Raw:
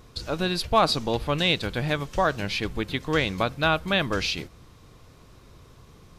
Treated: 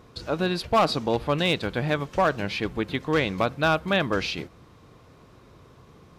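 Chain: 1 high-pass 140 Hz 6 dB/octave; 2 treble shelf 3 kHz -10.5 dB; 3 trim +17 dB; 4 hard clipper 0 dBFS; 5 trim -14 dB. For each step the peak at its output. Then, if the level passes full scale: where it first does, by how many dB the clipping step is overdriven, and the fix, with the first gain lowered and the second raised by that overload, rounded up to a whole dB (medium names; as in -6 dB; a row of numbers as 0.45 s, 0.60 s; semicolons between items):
-7.0 dBFS, -8.5 dBFS, +8.5 dBFS, 0.0 dBFS, -14.0 dBFS; step 3, 8.5 dB; step 3 +8 dB, step 5 -5 dB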